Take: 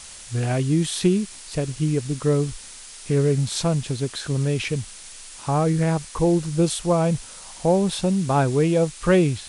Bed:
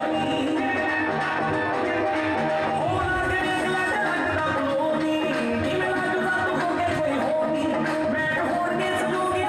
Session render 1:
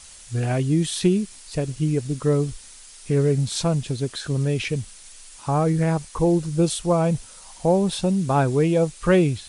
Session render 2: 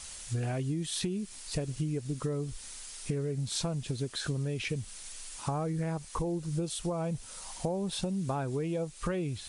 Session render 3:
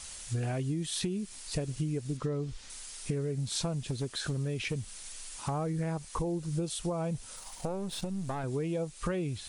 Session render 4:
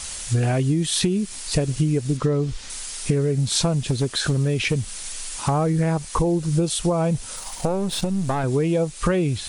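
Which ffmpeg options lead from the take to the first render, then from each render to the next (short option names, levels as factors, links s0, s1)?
-af "afftdn=nr=6:nf=-41"
-af "alimiter=limit=0.188:level=0:latency=1:release=492,acompressor=threshold=0.0316:ratio=6"
-filter_complex "[0:a]asettb=1/sr,asplit=3[s0][s1][s2];[s0]atrim=end=2.174[s3];[s1]atrim=start=2.17:end=2.7,asetpts=PTS-STARTPTS,afade=t=in:d=0.004:c=qsin,afade=t=out:st=0.526:d=0.004:c=qsin,lowpass=5400[s4];[s2]atrim=start=2.696[s5];[s3][s4]acrossfade=d=0.004:c1=hsin:c2=qsin[s6];[s6][s5]acrossfade=d=0.004:c1=qsin:c2=hsin,asettb=1/sr,asplit=3[s7][s8][s9];[s7]atrim=end=3.724[s10];[s8]atrim=start=3.72:end=5.74,asetpts=PTS-STARTPTS,afade=t=in:d=0.004:c=qsin,afade=t=out:st=2.016:d=0.004:c=qsin,asoftclip=type=hard:threshold=0.0501[s11];[s9]atrim=start=5.736[s12];[s10][s11]acrossfade=d=0.004:c1=hsin:c2=qsin[s13];[s13][s12]acrossfade=d=0.004:c1=qsin:c2=hsin,asettb=1/sr,asplit=3[s14][s15][s16];[s14]atrim=end=7.364[s17];[s15]atrim=start=7.36:end=8.44,asetpts=PTS-STARTPTS,afade=t=in:d=0.004:c=qsin,afade=t=out:st=1.076:d=0.004:c=qsin,aeval=exprs='if(lt(val(0),0),0.447*val(0),val(0))':c=same[s18];[s16]atrim=start=8.436[s19];[s17][s18]acrossfade=d=0.004:c1=hsin:c2=qsin[s20];[s20][s19]acrossfade=d=0.004:c1=qsin:c2=hsin"
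-af "volume=3.98"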